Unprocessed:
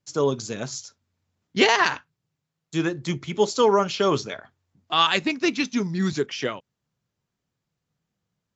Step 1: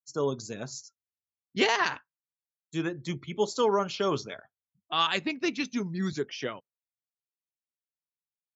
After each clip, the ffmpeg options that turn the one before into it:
-af "afftdn=nr=30:nf=-44,volume=-6.5dB"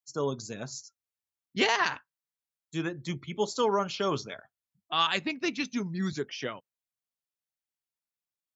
-af "equalizer=f=390:w=1.5:g=-2.5"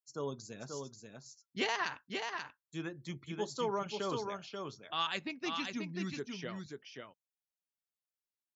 -af "aecho=1:1:535:0.562,volume=-8.5dB"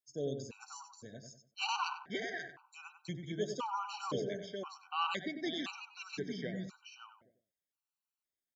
-filter_complex "[0:a]asplit=2[a][b];[b]adelay=95,lowpass=f=1.3k:p=1,volume=-6dB,asplit=2[c][d];[d]adelay=95,lowpass=f=1.3k:p=1,volume=0.36,asplit=2[e][f];[f]adelay=95,lowpass=f=1.3k:p=1,volume=0.36,asplit=2[g][h];[h]adelay=95,lowpass=f=1.3k:p=1,volume=0.36[i];[a][c][e][g][i]amix=inputs=5:normalize=0,afftfilt=real='re*gt(sin(2*PI*0.97*pts/sr)*(1-2*mod(floor(b*sr/1024/770),2)),0)':imag='im*gt(sin(2*PI*0.97*pts/sr)*(1-2*mod(floor(b*sr/1024/770),2)),0)':win_size=1024:overlap=0.75,volume=1.5dB"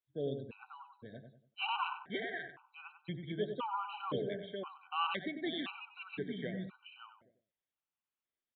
-af "aresample=8000,aresample=44100"

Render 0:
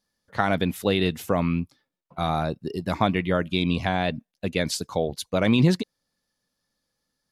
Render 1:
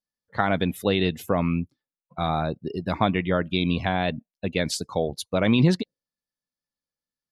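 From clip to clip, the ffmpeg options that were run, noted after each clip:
-af "afftdn=nr=17:nf=-45"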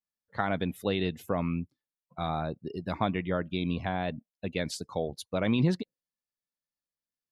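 -af "adynamicequalizer=threshold=0.0112:dfrequency=2000:dqfactor=0.7:tfrequency=2000:tqfactor=0.7:attack=5:release=100:ratio=0.375:range=3:mode=cutabove:tftype=highshelf,volume=-6.5dB"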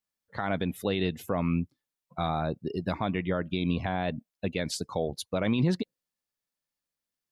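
-af "alimiter=limit=-21dB:level=0:latency=1:release=163,volume=4.5dB"

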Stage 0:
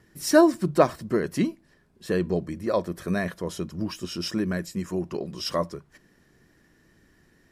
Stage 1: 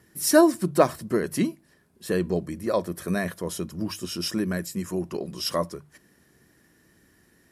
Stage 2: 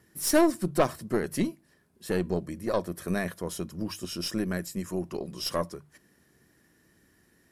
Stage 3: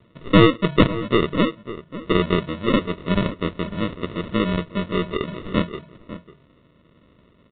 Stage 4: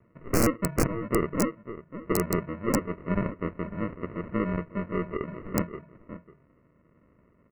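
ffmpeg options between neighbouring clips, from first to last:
-af "highpass=50,equalizer=f=11k:w=1:g=10.5,bandreject=f=50:t=h:w=6,bandreject=f=100:t=h:w=6,bandreject=f=150:t=h:w=6"
-af "aeval=exprs='(tanh(5.01*val(0)+0.55)-tanh(0.55))/5.01':c=same,volume=-1dB"
-filter_complex "[0:a]aresample=8000,acrusher=samples=10:mix=1:aa=0.000001,aresample=44100,asplit=2[a][b];[b]adelay=548.1,volume=-14dB,highshelf=f=4k:g=-12.3[c];[a][c]amix=inputs=2:normalize=0,volume=8.5dB"
-af "aeval=exprs='(mod(2.24*val(0)+1,2)-1)/2.24':c=same,asuperstop=centerf=3500:order=4:qfactor=1.1,volume=-6.5dB"

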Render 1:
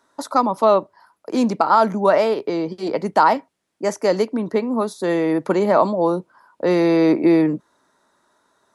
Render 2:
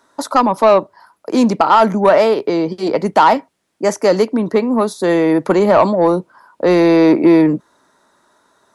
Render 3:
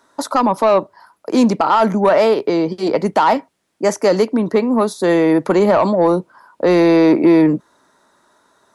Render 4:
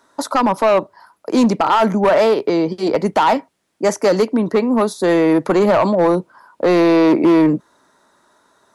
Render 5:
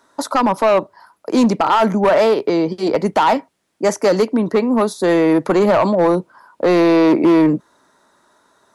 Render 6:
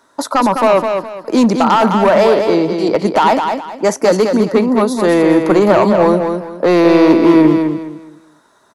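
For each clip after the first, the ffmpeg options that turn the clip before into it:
-af "acontrast=65"
-af "alimiter=limit=-5.5dB:level=0:latency=1:release=43"
-af "volume=8.5dB,asoftclip=hard,volume=-8.5dB"
-af anull
-af "aecho=1:1:208|416|624|832:0.501|0.145|0.0421|0.0122,volume=2.5dB"

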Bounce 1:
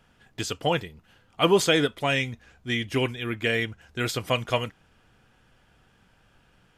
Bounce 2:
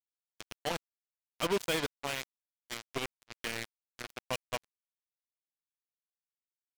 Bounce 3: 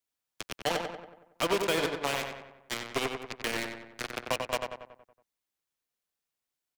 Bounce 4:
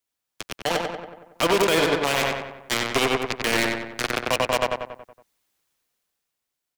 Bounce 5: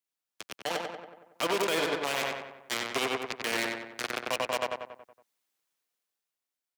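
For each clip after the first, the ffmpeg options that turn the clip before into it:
-af "equalizer=f=12k:t=o:w=0.55:g=-7.5,acrusher=bits=2:mix=0:aa=0.5,asoftclip=type=hard:threshold=-24.5dB"
-filter_complex "[0:a]acrossover=split=260|990|4000[a][b][c][d];[a]acompressor=threshold=-51dB:ratio=4[e];[b]acompressor=threshold=-36dB:ratio=4[f];[c]acompressor=threshold=-40dB:ratio=4[g];[d]acompressor=threshold=-46dB:ratio=4[h];[e][f][g][h]amix=inputs=4:normalize=0,asplit=2[i][j];[j]adelay=93,lowpass=f=3k:p=1,volume=-4.5dB,asplit=2[k][l];[l]adelay=93,lowpass=f=3k:p=1,volume=0.54,asplit=2[m][n];[n]adelay=93,lowpass=f=3k:p=1,volume=0.54,asplit=2[o][p];[p]adelay=93,lowpass=f=3k:p=1,volume=0.54,asplit=2[q][r];[r]adelay=93,lowpass=f=3k:p=1,volume=0.54,asplit=2[s][t];[t]adelay=93,lowpass=f=3k:p=1,volume=0.54,asplit=2[u][v];[v]adelay=93,lowpass=f=3k:p=1,volume=0.54[w];[k][m][o][q][s][u][w]amix=inputs=7:normalize=0[x];[i][x]amix=inputs=2:normalize=0,volume=7.5dB"
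-af "dynaudnorm=f=200:g=11:m=11.5dB,alimiter=limit=-14.5dB:level=0:latency=1:release=50,volume=4dB"
-af "highpass=f=270:p=1,volume=-7.5dB"

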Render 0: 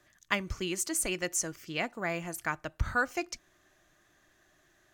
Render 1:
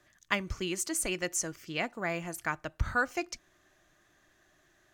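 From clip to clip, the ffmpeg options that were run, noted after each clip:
-af "highshelf=f=10k:g=-3.5"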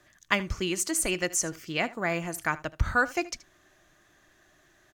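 -af "aecho=1:1:77:0.112,volume=4.5dB"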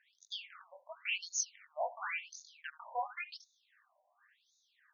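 -af "flanger=delay=19.5:depth=5.4:speed=0.52,afftfilt=real='re*between(b*sr/1024,710*pow(5000/710,0.5+0.5*sin(2*PI*0.93*pts/sr))/1.41,710*pow(5000/710,0.5+0.5*sin(2*PI*0.93*pts/sr))*1.41)':imag='im*between(b*sr/1024,710*pow(5000/710,0.5+0.5*sin(2*PI*0.93*pts/sr))/1.41,710*pow(5000/710,0.5+0.5*sin(2*PI*0.93*pts/sr))*1.41)':win_size=1024:overlap=0.75"

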